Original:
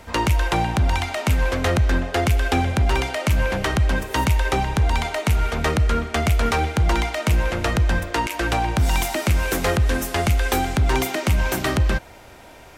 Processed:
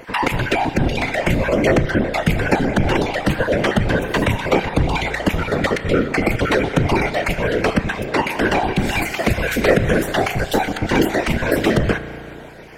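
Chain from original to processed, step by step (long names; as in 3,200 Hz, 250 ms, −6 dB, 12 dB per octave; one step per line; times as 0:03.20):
time-frequency cells dropped at random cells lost 27%
octave-band graphic EQ 250/500/2,000/4,000 Hz +10/+10/+9/+3 dB
random phases in short frames
convolution reverb RT60 2.4 s, pre-delay 34 ms, DRR 11.5 dB
slew-rate limiting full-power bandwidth 730 Hz
level −2.5 dB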